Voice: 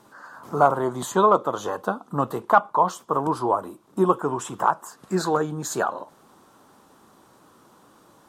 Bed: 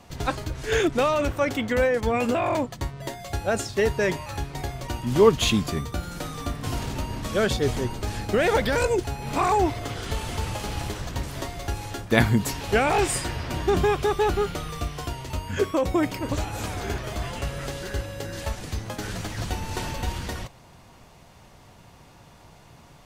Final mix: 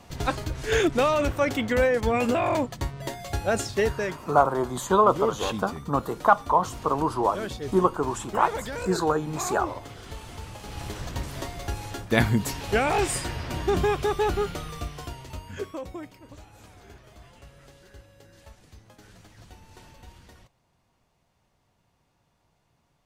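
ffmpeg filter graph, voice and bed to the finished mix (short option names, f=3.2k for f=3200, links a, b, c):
-filter_complex "[0:a]adelay=3750,volume=-1.5dB[a];[1:a]volume=8.5dB,afade=t=out:st=3.73:d=0.46:silence=0.298538,afade=t=in:st=10.61:d=0.43:silence=0.375837,afade=t=out:st=14.41:d=1.73:silence=0.133352[b];[a][b]amix=inputs=2:normalize=0"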